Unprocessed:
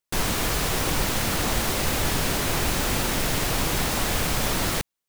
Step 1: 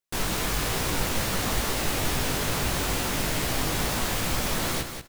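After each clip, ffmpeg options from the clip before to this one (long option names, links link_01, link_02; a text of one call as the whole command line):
ffmpeg -i in.wav -af "flanger=delay=15.5:depth=5.4:speed=2.3,aecho=1:1:186|372|558:0.398|0.0717|0.0129" out.wav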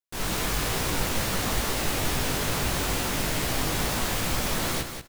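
ffmpeg -i in.wav -af "dynaudnorm=framelen=130:gausssize=3:maxgain=7.5dB,volume=-7.5dB" out.wav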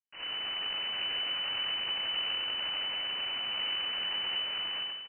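ffmpeg -i in.wav -af "aecho=1:1:93.29|131.2:0.708|0.316,aeval=exprs='abs(val(0))':channel_layout=same,lowpass=frequency=2600:width_type=q:width=0.5098,lowpass=frequency=2600:width_type=q:width=0.6013,lowpass=frequency=2600:width_type=q:width=0.9,lowpass=frequency=2600:width_type=q:width=2.563,afreqshift=-3000,volume=-9dB" out.wav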